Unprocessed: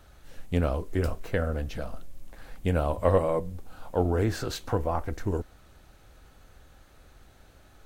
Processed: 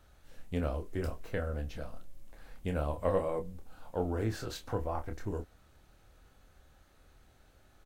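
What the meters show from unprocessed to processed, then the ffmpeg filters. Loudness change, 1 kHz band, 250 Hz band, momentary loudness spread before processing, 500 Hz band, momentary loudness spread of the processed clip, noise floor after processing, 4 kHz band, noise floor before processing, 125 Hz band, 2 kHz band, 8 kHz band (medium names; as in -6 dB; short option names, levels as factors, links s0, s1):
-7.5 dB, -7.5 dB, -7.0 dB, 12 LU, -7.0 dB, 11 LU, -64 dBFS, -7.0 dB, -55 dBFS, -8.0 dB, -7.0 dB, -7.5 dB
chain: -filter_complex "[0:a]asplit=2[s0][s1];[s1]adelay=27,volume=0.422[s2];[s0][s2]amix=inputs=2:normalize=0,volume=0.398"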